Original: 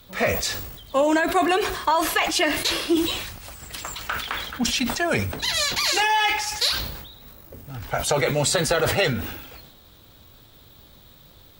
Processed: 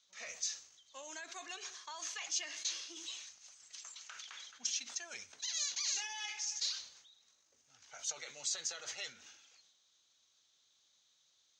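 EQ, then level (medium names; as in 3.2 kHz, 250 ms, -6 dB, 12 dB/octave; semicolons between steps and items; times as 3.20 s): band-pass filter 6.4 kHz, Q 9.1; distance through air 150 m; +8.0 dB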